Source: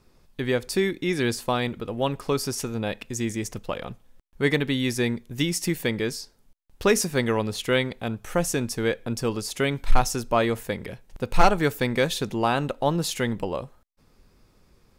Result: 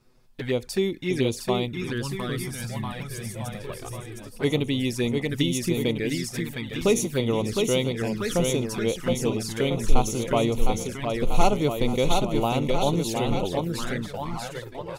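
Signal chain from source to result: spectral gain 1.66–3.82, 220–8000 Hz -8 dB; bouncing-ball echo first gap 0.71 s, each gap 0.9×, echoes 5; envelope flanger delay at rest 8.5 ms, full sweep at -20 dBFS

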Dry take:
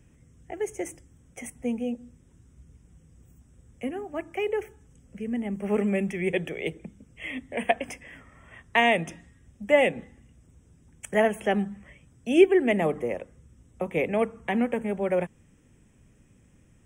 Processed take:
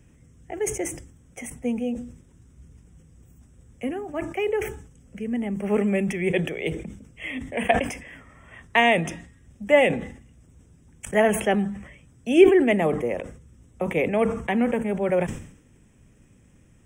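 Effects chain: sustainer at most 87 dB/s; gain +2.5 dB

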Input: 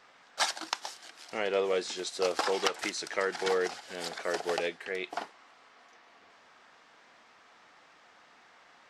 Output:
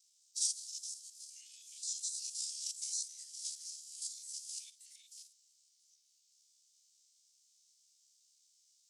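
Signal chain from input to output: stepped spectrum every 50 ms; ring modulator 35 Hz; inverse Chebyshev high-pass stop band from 1500 Hz, stop band 70 dB; formant-preserving pitch shift -2.5 st; gain +12.5 dB

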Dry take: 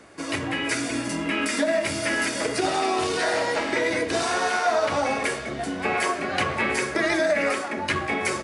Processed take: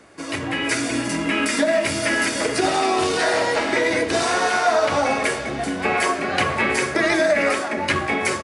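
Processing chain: AGC gain up to 4 dB; on a send: echo 0.425 s -15 dB

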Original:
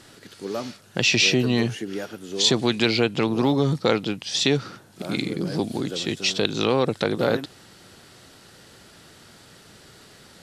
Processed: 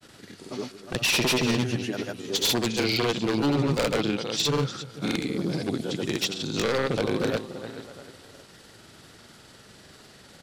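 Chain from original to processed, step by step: feedback echo 0.341 s, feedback 34%, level -13 dB; wavefolder -16 dBFS; grains, pitch spread up and down by 0 st

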